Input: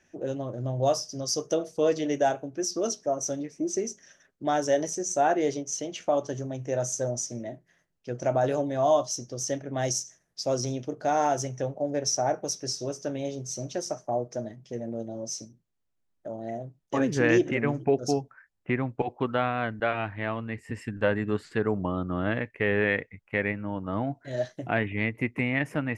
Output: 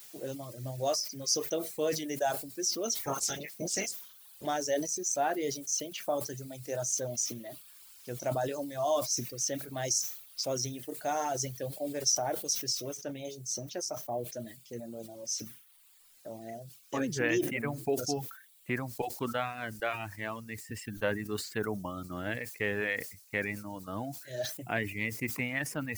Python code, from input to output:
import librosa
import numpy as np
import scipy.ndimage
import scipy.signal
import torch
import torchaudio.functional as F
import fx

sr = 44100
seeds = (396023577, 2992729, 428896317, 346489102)

y = fx.spec_clip(x, sr, under_db=24, at=(2.95, 4.45), fade=0.02)
y = fx.noise_floor_step(y, sr, seeds[0], at_s=12.97, before_db=-52, after_db=-59, tilt_db=0.0)
y = fx.dereverb_blind(y, sr, rt60_s=1.2)
y = fx.high_shelf(y, sr, hz=2600.0, db=9.0)
y = fx.sustainer(y, sr, db_per_s=93.0)
y = F.gain(torch.from_numpy(y), -7.0).numpy()